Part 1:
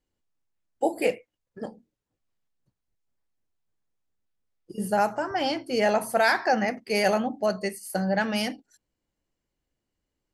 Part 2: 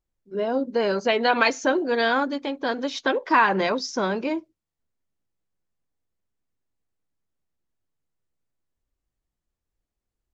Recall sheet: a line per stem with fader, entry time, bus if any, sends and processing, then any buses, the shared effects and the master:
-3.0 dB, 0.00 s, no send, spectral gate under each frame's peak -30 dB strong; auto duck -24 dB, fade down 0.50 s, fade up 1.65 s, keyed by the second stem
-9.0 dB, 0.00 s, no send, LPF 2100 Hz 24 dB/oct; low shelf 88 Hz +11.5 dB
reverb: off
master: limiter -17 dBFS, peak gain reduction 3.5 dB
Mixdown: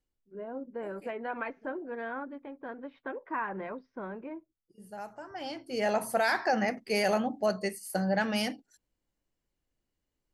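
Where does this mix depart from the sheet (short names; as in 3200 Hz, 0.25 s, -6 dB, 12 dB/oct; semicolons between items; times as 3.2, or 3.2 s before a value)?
stem 1: missing spectral gate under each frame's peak -30 dB strong; stem 2 -9.0 dB -> -15.5 dB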